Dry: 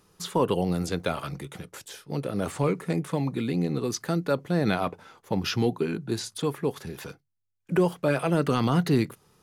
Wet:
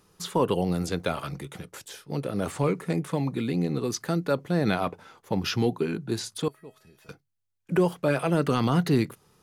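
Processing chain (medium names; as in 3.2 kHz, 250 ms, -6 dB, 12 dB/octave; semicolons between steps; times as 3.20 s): 6.48–7.09 s: feedback comb 640 Hz, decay 0.4 s, mix 90%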